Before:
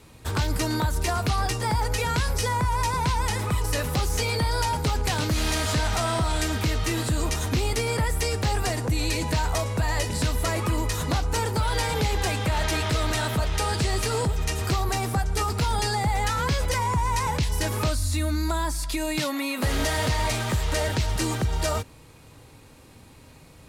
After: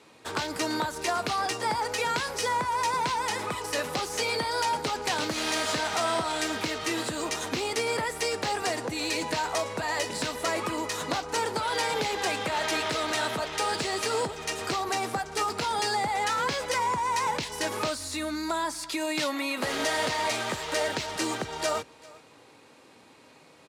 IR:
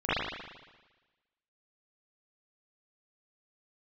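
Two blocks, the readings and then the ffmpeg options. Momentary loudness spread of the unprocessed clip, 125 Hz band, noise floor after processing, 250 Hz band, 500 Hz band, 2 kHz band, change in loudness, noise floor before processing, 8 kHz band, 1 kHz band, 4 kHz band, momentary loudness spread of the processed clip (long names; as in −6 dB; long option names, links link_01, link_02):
2 LU, −18.0 dB, −55 dBFS, −4.5 dB, −0.5 dB, 0.0 dB, −3.0 dB, −49 dBFS, −2.5 dB, 0.0 dB, −0.5 dB, 4 LU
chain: -filter_complex "[0:a]highpass=310,adynamicsmooth=sensitivity=7.5:basefreq=7700,asplit=2[link_01][link_02];[link_02]aecho=0:1:395:0.075[link_03];[link_01][link_03]amix=inputs=2:normalize=0"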